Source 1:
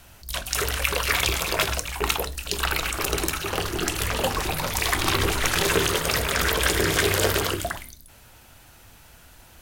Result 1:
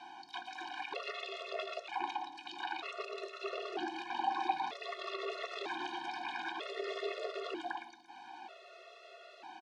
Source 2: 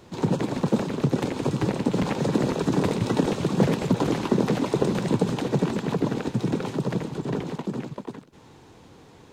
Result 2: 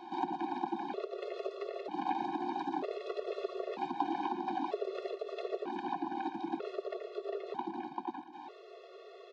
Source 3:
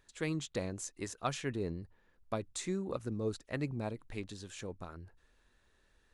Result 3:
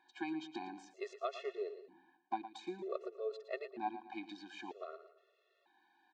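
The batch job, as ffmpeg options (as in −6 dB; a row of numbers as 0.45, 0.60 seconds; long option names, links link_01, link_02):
-af "alimiter=limit=-13dB:level=0:latency=1:release=151,aemphasis=mode=production:type=50kf,acompressor=threshold=-37dB:ratio=3,highpass=frequency=340:width=0.5412,highpass=frequency=340:width=1.3066,equalizer=frequency=350:width_type=q:width=4:gain=3,equalizer=frequency=500:width_type=q:width=4:gain=-9,equalizer=frequency=780:width_type=q:width=4:gain=10,equalizer=frequency=1300:width_type=q:width=4:gain=-8,equalizer=frequency=2000:width_type=q:width=4:gain=-9,equalizer=frequency=3000:width_type=q:width=4:gain=-7,lowpass=frequency=3200:width=0.5412,lowpass=frequency=3200:width=1.3066,aecho=1:1:114|228|342|456:0.237|0.0901|0.0342|0.013,afftfilt=real='re*gt(sin(2*PI*0.53*pts/sr)*(1-2*mod(floor(b*sr/1024/360),2)),0)':imag='im*gt(sin(2*PI*0.53*pts/sr)*(1-2*mod(floor(b*sr/1024/360),2)),0)':win_size=1024:overlap=0.75,volume=6.5dB"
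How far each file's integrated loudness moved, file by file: −16.5, −13.0, −4.5 LU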